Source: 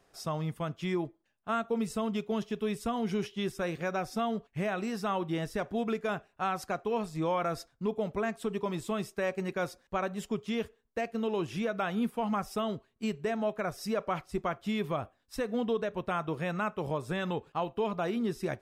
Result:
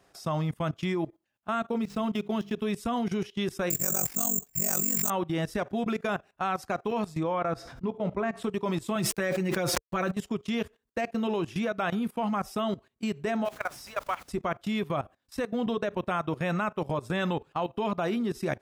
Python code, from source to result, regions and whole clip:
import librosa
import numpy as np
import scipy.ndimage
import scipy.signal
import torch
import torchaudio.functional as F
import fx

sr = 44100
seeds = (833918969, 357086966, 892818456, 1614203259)

y = fx.chain(x, sr, fx.median_filter(points=5),
    fx.hum_notches(base_hz=50, count=7), at=(1.75, 2.58))
y = fx.chain(y, sr, fx.low_shelf(hz=300.0, db=8.0),
    fx.resample_bad(factor=6, down='none', up='zero_stuff'),
    fx.ring_mod(carrier_hz=23.0), at=(3.7, 5.1))
y = fx.chain(y, sr, fx.lowpass(hz=2000.0, slope=6),
    fx.comb_fb(f0_hz=63.0, decay_s=0.22, harmonics='all', damping=0.0, mix_pct=50),
    fx.sustainer(db_per_s=39.0), at=(7.23, 8.43))
y = fx.chain(y, sr, fx.comb(ms=5.9, depth=0.75),
    fx.sample_gate(floor_db=-53.5),
    fx.sustainer(db_per_s=25.0), at=(8.95, 10.11))
y = fx.highpass(y, sr, hz=840.0, slope=12, at=(13.44, 14.28), fade=0.02)
y = fx.dmg_noise_colour(y, sr, seeds[0], colour='pink', level_db=-54.0, at=(13.44, 14.28), fade=0.02)
y = scipy.signal.sosfilt(scipy.signal.butter(2, 40.0, 'highpass', fs=sr, output='sos'), y)
y = fx.notch(y, sr, hz=450.0, q=12.0)
y = fx.level_steps(y, sr, step_db=18)
y = y * librosa.db_to_amplitude(8.0)